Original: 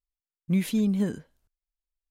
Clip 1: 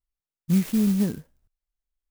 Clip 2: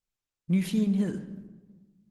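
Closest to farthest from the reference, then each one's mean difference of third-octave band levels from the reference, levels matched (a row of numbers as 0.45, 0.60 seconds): 2, 1; 2.5, 5.5 decibels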